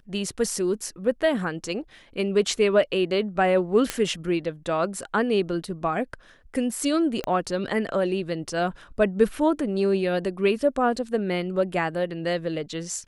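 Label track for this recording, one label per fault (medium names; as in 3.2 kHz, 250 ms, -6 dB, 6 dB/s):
3.900000	3.900000	pop -8 dBFS
7.240000	7.240000	pop -15 dBFS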